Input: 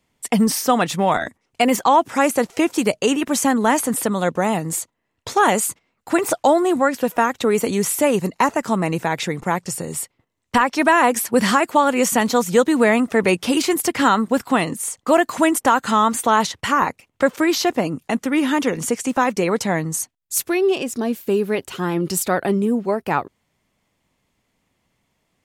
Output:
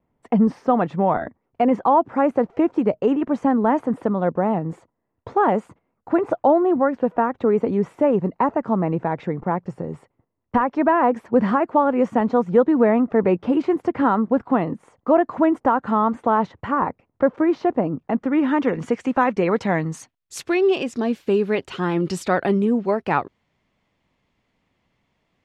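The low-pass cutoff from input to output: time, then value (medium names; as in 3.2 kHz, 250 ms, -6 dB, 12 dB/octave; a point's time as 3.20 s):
17.94 s 1 kHz
18.88 s 2.1 kHz
19.39 s 2.1 kHz
20.35 s 4 kHz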